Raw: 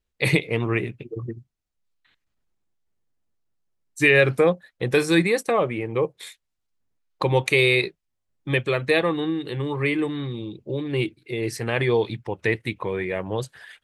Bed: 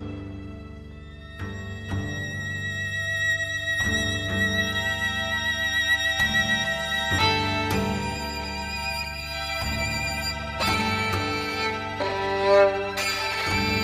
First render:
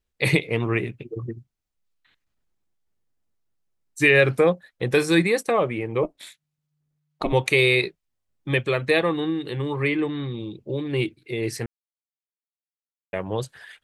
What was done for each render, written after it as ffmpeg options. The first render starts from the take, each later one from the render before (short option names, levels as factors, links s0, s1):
-filter_complex "[0:a]asettb=1/sr,asplit=3[s0][s1][s2];[s0]atrim=end=6.034[s3];[s1]atrim=start=6.03:end=7.33,asetpts=PTS-STARTPTS,afade=t=in:d=0.004:c=qsin,afade=t=out:st=1.296:d=0.004:c=qsin,aeval=exprs='val(0)*sin(2*PI*150*n/s)':c=same[s4];[s2]atrim=start=7.326[s5];[s3][s4]acrossfade=d=0.004:c1=hsin:c2=qsin[s6];[s6][s5]acrossfade=d=0.004:c1=qsin:c2=hsin,asettb=1/sr,asplit=3[s7][s8][s9];[s7]atrim=end=9.884[s10];[s8]atrim=start=9.88:end=10.4,asetpts=PTS-STARTPTS,afade=t=in:d=0.004:c=qsin,afade=t=out:st=0.516:d=0.004:c=qsin,lowpass=5100[s11];[s9]atrim=start=10.396[s12];[s10][s11]acrossfade=d=0.004:c1=hsin:c2=qsin[s13];[s13][s12]acrossfade=d=0.004:c1=qsin:c2=hsin,asplit=3[s14][s15][s16];[s14]atrim=end=11.66,asetpts=PTS-STARTPTS,afade=t=out:st=11.656:d=0.004:c=hsin[s17];[s15]atrim=start=11.66:end=13.13,asetpts=PTS-STARTPTS,volume=0[s18];[s16]atrim=start=13.13,asetpts=PTS-STARTPTS,afade=t=in:d=0.004:c=hsin[s19];[s17][s18][s19]concat=n=3:v=0:a=1"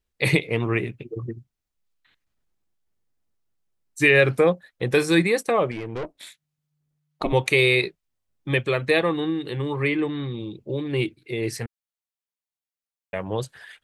-filter_complex "[0:a]asettb=1/sr,asplit=3[s0][s1][s2];[s0]atrim=end=5.714[s3];[s1]atrim=start=5.71:end=6.16,asetpts=PTS-STARTPTS,afade=t=in:d=0.004:c=qsin,afade=t=out:st=0.446:d=0.004:c=qsin,aeval=exprs='(tanh(22.4*val(0)+0.4)-tanh(0.4))/22.4':c=same[s4];[s2]atrim=start=6.156[s5];[s3][s4]acrossfade=d=0.004:c1=hsin:c2=qsin[s6];[s6][s5]acrossfade=d=0.004:c1=qsin:c2=hsin,asettb=1/sr,asplit=3[s7][s8][s9];[s7]atrim=end=11.554[s10];[s8]atrim=start=11.55:end=13.22,asetpts=PTS-STARTPTS,afade=t=in:d=0.004:c=qsin,afade=t=out:st=1.666:d=0.004:c=qsin,equalizer=f=340:t=o:w=0.37:g=-12[s11];[s9]atrim=start=13.216[s12];[s10][s11]acrossfade=d=0.004:c1=hsin:c2=qsin[s13];[s13][s12]acrossfade=d=0.004:c1=qsin:c2=hsin"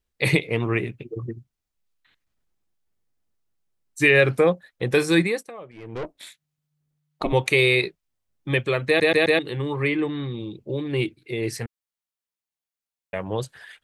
-filter_complex "[0:a]asplit=7[s0][s1][s2][s3][s4][s5][s6];[s0]atrim=end=5.51,asetpts=PTS-STARTPTS,afade=t=out:st=5.21:d=0.3:silence=0.11885[s7];[s1]atrim=start=5.51:end=5.72,asetpts=PTS-STARTPTS,volume=0.119[s8];[s2]atrim=start=5.72:end=9.002,asetpts=PTS-STARTPTS,afade=t=in:d=0.3:silence=0.11885[s9];[s3]atrim=start=8.868:end=9.002[s10];[s4]atrim=start=8.868:end=9.002[s11];[s5]atrim=start=8.868:end=9.002[s12];[s6]atrim=start=9.388[s13];[s7][s8][s9]concat=n=3:v=0:a=1[s14];[s14][s10]acrossfade=d=0.004:c1=hsin:c2=hsin[s15];[s15][s11]acrossfade=d=0.004:c1=hsin:c2=hsin[s16];[s16][s12]acrossfade=d=0.004:c1=hsin:c2=hsin[s17];[s17][s13]acrossfade=d=0.004:c1=hsin:c2=hsin"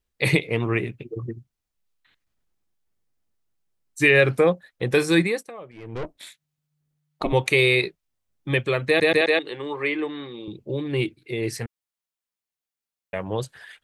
-filter_complex "[0:a]asettb=1/sr,asplit=3[s0][s1][s2];[s0]atrim=end=5.784[s3];[s1]atrim=start=5.78:end=6.18,asetpts=PTS-STARTPTS,afade=t=in:d=0.004:c=qsin,afade=t=out:st=0.396:d=0.004:c=qsin,asubboost=boost=9:cutoff=240[s4];[s2]atrim=start=6.176[s5];[s3][s4]acrossfade=d=0.004:c1=hsin:c2=qsin[s6];[s6][s5]acrossfade=d=0.004:c1=qsin:c2=hsin,asettb=1/sr,asplit=3[s7][s8][s9];[s7]atrim=end=9.214[s10];[s8]atrim=start=9.21:end=10.48,asetpts=PTS-STARTPTS,afade=t=in:d=0.004:c=qsin,afade=t=out:st=1.266:d=0.004:c=qsin,highpass=340,lowpass=7600[s11];[s9]atrim=start=10.476[s12];[s10][s11]acrossfade=d=0.004:c1=hsin:c2=qsin[s13];[s13][s12]acrossfade=d=0.004:c1=qsin:c2=hsin"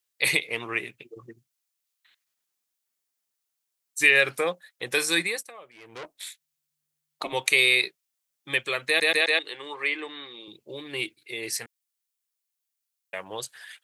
-af "highpass=f=1300:p=1,highshelf=f=4600:g=8.5"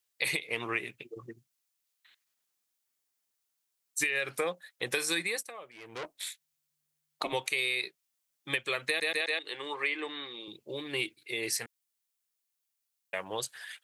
-af "alimiter=limit=0.266:level=0:latency=1:release=250,acompressor=threshold=0.0447:ratio=6"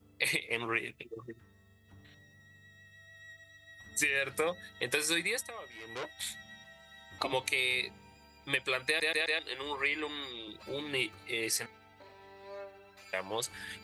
-filter_complex "[1:a]volume=0.0376[s0];[0:a][s0]amix=inputs=2:normalize=0"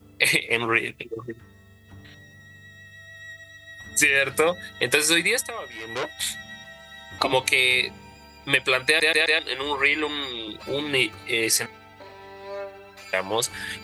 -af "volume=3.55"